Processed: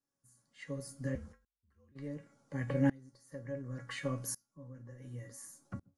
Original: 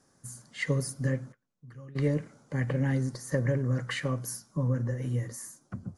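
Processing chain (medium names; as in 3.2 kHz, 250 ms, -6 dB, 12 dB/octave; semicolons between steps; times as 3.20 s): feedback comb 280 Hz, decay 0.22 s, harmonics all, mix 80%; 1.15–1.92 s: frequency shift -49 Hz; sawtooth tremolo in dB swelling 0.69 Hz, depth 26 dB; trim +8.5 dB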